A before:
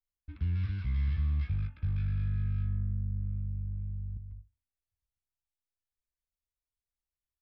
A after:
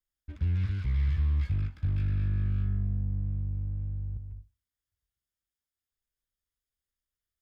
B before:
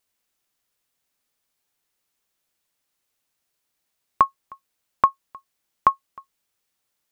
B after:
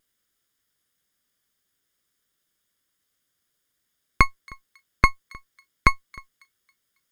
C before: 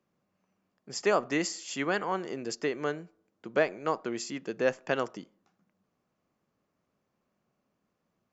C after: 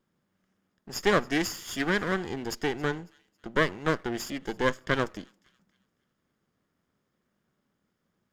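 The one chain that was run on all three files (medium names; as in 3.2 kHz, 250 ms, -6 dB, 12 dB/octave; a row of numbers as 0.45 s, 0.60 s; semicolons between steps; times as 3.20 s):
comb filter that takes the minimum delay 0.59 ms; vibrato 0.58 Hz 6.9 cents; on a send: feedback echo behind a high-pass 274 ms, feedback 36%, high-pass 2.6 kHz, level -22 dB; on the sum: loudspeaker Doppler distortion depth 0.13 ms; trim +3 dB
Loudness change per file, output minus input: +3.0 LU, 0.0 LU, +2.5 LU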